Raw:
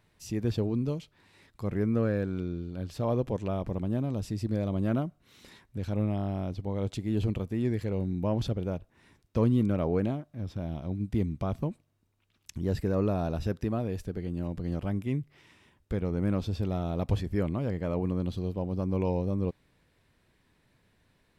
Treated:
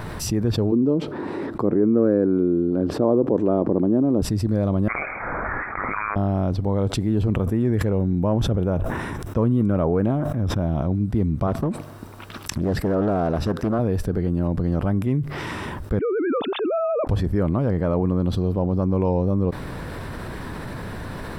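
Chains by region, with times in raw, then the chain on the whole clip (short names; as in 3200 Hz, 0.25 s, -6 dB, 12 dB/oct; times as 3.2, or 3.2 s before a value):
0.72–4.22 resonant high-pass 320 Hz, resonance Q 2.1 + tilt -4 dB/oct
4.88–6.16 steep high-pass 1200 Hz 96 dB/oct + inverted band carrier 3600 Hz + fast leveller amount 50%
7.29–10.96 bell 4500 Hz -11 dB 0.27 oct + sustainer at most 89 dB/s
11.47–13.79 low shelf 150 Hz -11 dB + Doppler distortion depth 0.53 ms
15.99–17.07 sine-wave speech + HPF 1400 Hz 6 dB/oct + tilt -3 dB/oct
whole clip: resonant high shelf 1800 Hz -7 dB, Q 1.5; notch 6700 Hz, Q 9; fast leveller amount 70%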